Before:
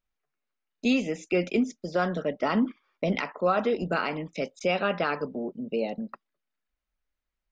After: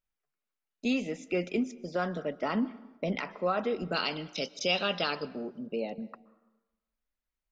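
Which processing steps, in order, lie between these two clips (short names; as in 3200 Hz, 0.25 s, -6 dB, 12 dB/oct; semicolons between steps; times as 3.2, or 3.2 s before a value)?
3.94–5.67 band shelf 4200 Hz +15 dB 1.3 oct; plate-style reverb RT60 1.1 s, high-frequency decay 0.6×, pre-delay 0.115 s, DRR 19.5 dB; gain -5 dB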